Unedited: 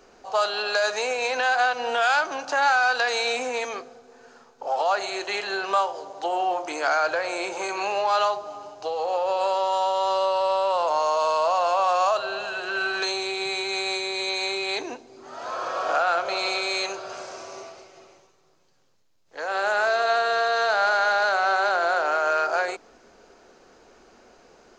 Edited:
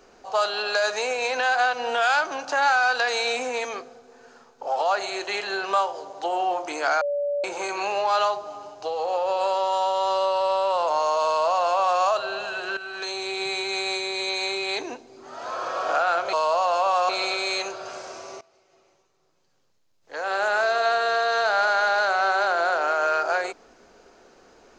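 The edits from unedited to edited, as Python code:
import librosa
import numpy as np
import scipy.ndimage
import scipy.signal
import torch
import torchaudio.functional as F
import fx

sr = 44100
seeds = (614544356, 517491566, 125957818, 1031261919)

y = fx.edit(x, sr, fx.bleep(start_s=7.01, length_s=0.43, hz=576.0, db=-22.5),
    fx.duplicate(start_s=11.26, length_s=0.76, to_s=16.33),
    fx.fade_in_from(start_s=12.77, length_s=0.62, floor_db=-13.5),
    fx.fade_in_from(start_s=17.65, length_s=1.75, floor_db=-20.5), tone=tone)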